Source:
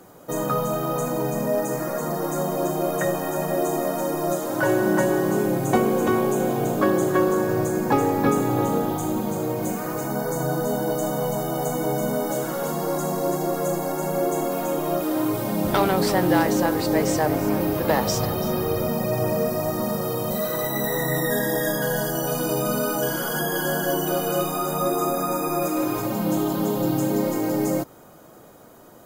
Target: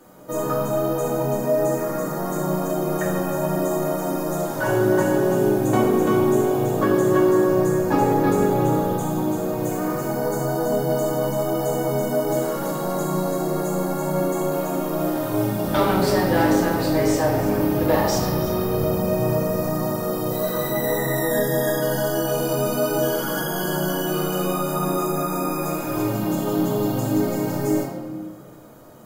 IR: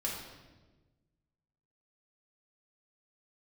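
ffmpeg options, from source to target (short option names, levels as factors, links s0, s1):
-filter_complex "[1:a]atrim=start_sample=2205[s0];[0:a][s0]afir=irnorm=-1:irlink=0,volume=0.75"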